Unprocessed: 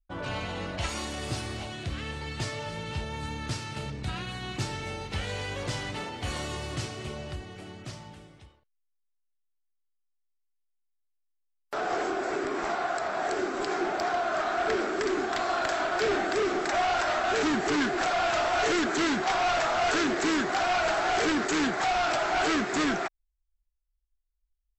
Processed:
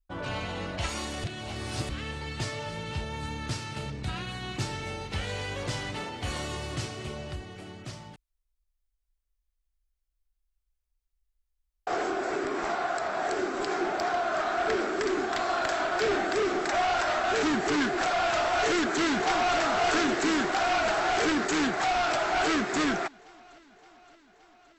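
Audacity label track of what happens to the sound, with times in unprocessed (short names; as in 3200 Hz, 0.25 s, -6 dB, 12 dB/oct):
1.240000	1.890000	reverse
8.160000	11.870000	room tone
18.570000	19.590000	echo throw 0.57 s, feedback 70%, level -9 dB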